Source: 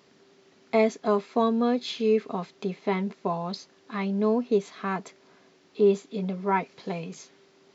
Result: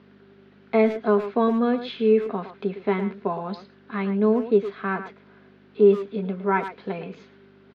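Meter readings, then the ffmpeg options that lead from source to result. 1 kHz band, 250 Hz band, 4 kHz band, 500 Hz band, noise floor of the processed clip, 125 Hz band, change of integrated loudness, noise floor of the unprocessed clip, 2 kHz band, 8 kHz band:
+1.5 dB, +3.5 dB, −3.0 dB, +4.0 dB, −54 dBFS, +2.0 dB, +3.5 dB, −60 dBFS, +4.0 dB, can't be measured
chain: -filter_complex "[0:a]aeval=exprs='val(0)+0.00447*(sin(2*PI*50*n/s)+sin(2*PI*2*50*n/s)/2+sin(2*PI*3*50*n/s)/3+sin(2*PI*4*50*n/s)/4+sin(2*PI*5*50*n/s)/5)':channel_layout=same,highpass=190,equalizer=frequency=210:width_type=q:width=4:gain=7,equalizer=frequency=410:width_type=q:width=4:gain=5,equalizer=frequency=1500:width_type=q:width=4:gain=8,lowpass=frequency=3600:width=0.5412,lowpass=frequency=3600:width=1.3066,asplit=2[link_01][link_02];[link_02]adelay=110,highpass=300,lowpass=3400,asoftclip=type=hard:threshold=-15dB,volume=-10dB[link_03];[link_01][link_03]amix=inputs=2:normalize=0"

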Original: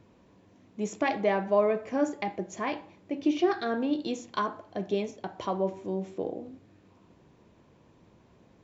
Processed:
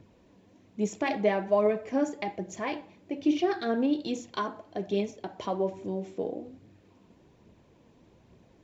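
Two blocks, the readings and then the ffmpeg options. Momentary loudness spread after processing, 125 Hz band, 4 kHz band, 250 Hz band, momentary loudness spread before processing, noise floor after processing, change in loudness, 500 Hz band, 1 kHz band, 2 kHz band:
13 LU, 0.0 dB, +0.5 dB, +1.0 dB, 12 LU, −61 dBFS, 0.0 dB, 0.0 dB, −2.0 dB, −1.5 dB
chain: -af "equalizer=frequency=1200:width=1.6:gain=-4.5,aphaser=in_gain=1:out_gain=1:delay=4.9:decay=0.35:speed=1.2:type=triangular"

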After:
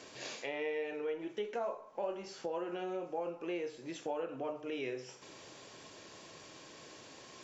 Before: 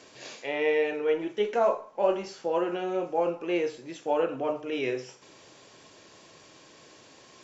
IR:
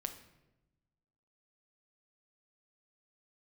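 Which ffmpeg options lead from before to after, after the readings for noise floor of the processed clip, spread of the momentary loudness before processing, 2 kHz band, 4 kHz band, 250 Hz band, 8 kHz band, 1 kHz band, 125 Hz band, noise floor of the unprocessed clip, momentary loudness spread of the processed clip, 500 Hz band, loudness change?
−55 dBFS, 8 LU, −9.5 dB, −6.5 dB, −9.5 dB, can't be measured, −11.5 dB, −8.5 dB, −54 dBFS, 14 LU, −11.5 dB, −11.0 dB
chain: -af "acompressor=threshold=-39dB:ratio=3"

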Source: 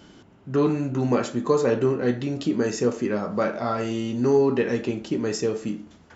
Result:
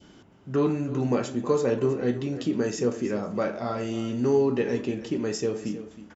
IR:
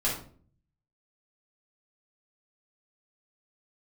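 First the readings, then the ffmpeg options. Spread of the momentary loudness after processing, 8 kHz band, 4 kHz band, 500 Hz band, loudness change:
7 LU, can't be measured, −3.0 dB, −2.5 dB, −2.5 dB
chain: -filter_complex "[0:a]asplit=2[link_01][link_02];[link_02]aecho=0:1:318:0.2[link_03];[link_01][link_03]amix=inputs=2:normalize=0,adynamicequalizer=threshold=0.0126:dfrequency=1300:dqfactor=0.97:tfrequency=1300:tqfactor=0.97:attack=5:release=100:ratio=0.375:range=2.5:mode=cutabove:tftype=bell,bandreject=frequency=4200:width=17,volume=-2.5dB"

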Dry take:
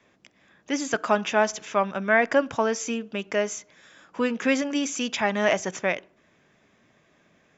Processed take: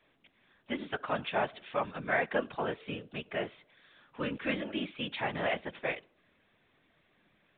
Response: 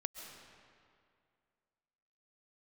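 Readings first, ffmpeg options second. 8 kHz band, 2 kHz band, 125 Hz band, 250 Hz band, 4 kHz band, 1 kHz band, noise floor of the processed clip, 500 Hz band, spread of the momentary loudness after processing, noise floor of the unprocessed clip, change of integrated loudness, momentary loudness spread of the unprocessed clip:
can't be measured, −9.0 dB, −3.5 dB, −11.0 dB, −7.5 dB, −9.0 dB, −71 dBFS, −10.5 dB, 9 LU, −63 dBFS, −9.5 dB, 9 LU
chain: -af "crystalizer=i=2.5:c=0,afftfilt=real='hypot(re,im)*cos(2*PI*random(0))':imag='hypot(re,im)*sin(2*PI*random(1))':win_size=512:overlap=0.75,volume=-4.5dB" -ar 8000 -c:a pcm_mulaw

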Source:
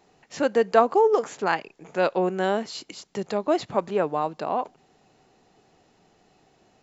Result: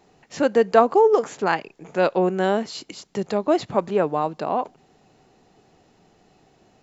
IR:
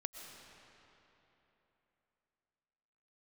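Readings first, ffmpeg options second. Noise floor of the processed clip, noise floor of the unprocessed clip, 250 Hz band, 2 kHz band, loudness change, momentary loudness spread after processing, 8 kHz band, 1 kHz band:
−60 dBFS, −63 dBFS, +4.0 dB, +1.5 dB, +3.0 dB, 15 LU, can't be measured, +2.5 dB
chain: -af "lowshelf=frequency=410:gain=4,volume=1.5dB"

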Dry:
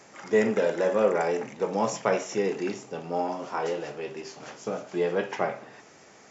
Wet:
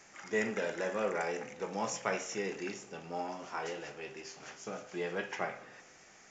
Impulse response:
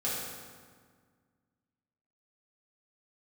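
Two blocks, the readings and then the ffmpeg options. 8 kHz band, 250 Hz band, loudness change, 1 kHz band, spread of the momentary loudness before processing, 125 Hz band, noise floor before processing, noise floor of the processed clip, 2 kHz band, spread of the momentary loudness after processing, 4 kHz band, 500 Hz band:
can't be measured, −10.0 dB, −9.5 dB, −8.5 dB, 13 LU, −9.0 dB, −53 dBFS, −59 dBFS, −3.5 dB, 13 LU, −4.0 dB, −11.5 dB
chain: -filter_complex "[0:a]equalizer=frequency=125:width_type=o:width=1:gain=-8,equalizer=frequency=250:width_type=o:width=1:gain=-7,equalizer=frequency=500:width_type=o:width=1:gain=-9,equalizer=frequency=1000:width_type=o:width=1:gain=-6,equalizer=frequency=4000:width_type=o:width=1:gain=-5,asplit=2[link_01][link_02];[1:a]atrim=start_sample=2205[link_03];[link_02][link_03]afir=irnorm=-1:irlink=0,volume=-23.5dB[link_04];[link_01][link_04]amix=inputs=2:normalize=0,volume=-1dB" -ar 16000 -c:a pcm_mulaw

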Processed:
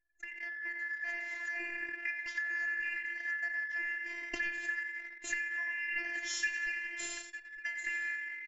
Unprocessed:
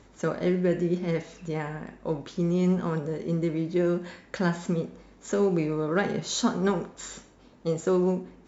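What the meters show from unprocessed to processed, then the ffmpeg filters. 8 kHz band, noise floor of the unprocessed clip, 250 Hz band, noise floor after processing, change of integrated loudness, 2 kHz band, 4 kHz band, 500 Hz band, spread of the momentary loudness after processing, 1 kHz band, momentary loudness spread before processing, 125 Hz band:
can't be measured, −55 dBFS, −30.0 dB, −51 dBFS, −8.0 dB, +7.5 dB, −7.0 dB, −30.0 dB, 6 LU, −19.5 dB, 12 LU, below −40 dB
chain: -filter_complex "[0:a]afftfilt=real='real(if(lt(b,272),68*(eq(floor(b/68),0)*1+eq(floor(b/68),1)*0+eq(floor(b/68),2)*3+eq(floor(b/68),3)*2)+mod(b,68),b),0)':imag='imag(if(lt(b,272),68*(eq(floor(b/68),0)*1+eq(floor(b/68),1)*0+eq(floor(b/68),2)*3+eq(floor(b/68),3)*2)+mod(b,68),b),0)':win_size=2048:overlap=0.75,asplit=2[link_01][link_02];[link_02]asplit=6[link_03][link_04][link_05][link_06][link_07][link_08];[link_03]adelay=87,afreqshift=58,volume=-10dB[link_09];[link_04]adelay=174,afreqshift=116,volume=-15.2dB[link_10];[link_05]adelay=261,afreqshift=174,volume=-20.4dB[link_11];[link_06]adelay=348,afreqshift=232,volume=-25.6dB[link_12];[link_07]adelay=435,afreqshift=290,volume=-30.8dB[link_13];[link_08]adelay=522,afreqshift=348,volume=-36dB[link_14];[link_09][link_10][link_11][link_12][link_13][link_14]amix=inputs=6:normalize=0[link_15];[link_01][link_15]amix=inputs=2:normalize=0,acompressor=threshold=-38dB:ratio=4,asplit=2[link_16][link_17];[link_17]adelay=904,lowpass=frequency=3300:poles=1,volume=-11dB,asplit=2[link_18][link_19];[link_19]adelay=904,lowpass=frequency=3300:poles=1,volume=0.17[link_20];[link_18][link_20]amix=inputs=2:normalize=0[link_21];[link_16][link_21]amix=inputs=2:normalize=0,afftfilt=real='hypot(re,im)*cos(PI*b)':imag='0':win_size=512:overlap=0.75,dynaudnorm=framelen=280:gausssize=5:maxgain=8dB,adynamicequalizer=threshold=0.00178:dfrequency=2600:dqfactor=4.3:tfrequency=2600:tqfactor=4.3:attack=5:release=100:ratio=0.375:range=2:mode=boostabove:tftype=bell,anlmdn=0.158,volume=-3dB"

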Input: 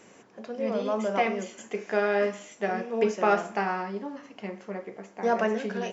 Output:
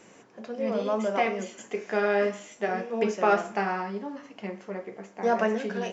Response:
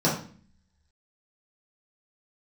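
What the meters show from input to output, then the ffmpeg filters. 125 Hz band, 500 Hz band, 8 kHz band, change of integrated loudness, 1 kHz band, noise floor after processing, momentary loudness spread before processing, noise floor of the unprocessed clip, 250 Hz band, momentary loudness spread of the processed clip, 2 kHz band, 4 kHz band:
+0.5 dB, 0.0 dB, can't be measured, +0.5 dB, +0.5 dB, −54 dBFS, 15 LU, −55 dBFS, +0.5 dB, 14 LU, +0.5 dB, 0.0 dB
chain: -af "flanger=delay=5.5:depth=5.1:regen=-65:speed=0.67:shape=triangular,volume=4.5dB" -ar 44100 -c:a sbc -b:a 128k

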